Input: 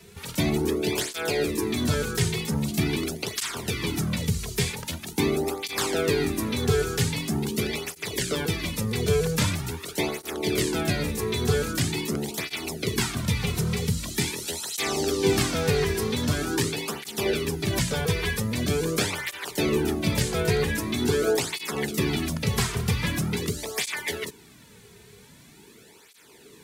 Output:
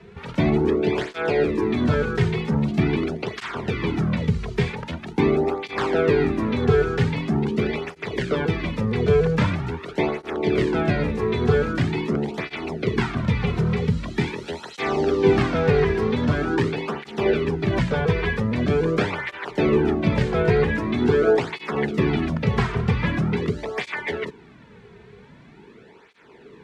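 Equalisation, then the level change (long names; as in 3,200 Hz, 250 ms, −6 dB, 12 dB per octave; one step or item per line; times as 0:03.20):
low-pass filter 1,900 Hz 12 dB per octave
parametric band 87 Hz −4 dB 0.83 octaves
parametric band 300 Hz −2.5 dB 0.21 octaves
+6.0 dB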